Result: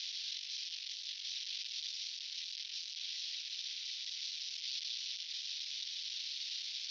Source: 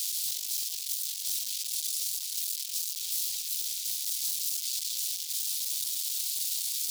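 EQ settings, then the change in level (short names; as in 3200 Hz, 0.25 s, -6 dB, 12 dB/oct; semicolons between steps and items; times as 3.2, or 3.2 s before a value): Chebyshev low-pass 5800 Hz, order 5; air absorption 220 m; +5.0 dB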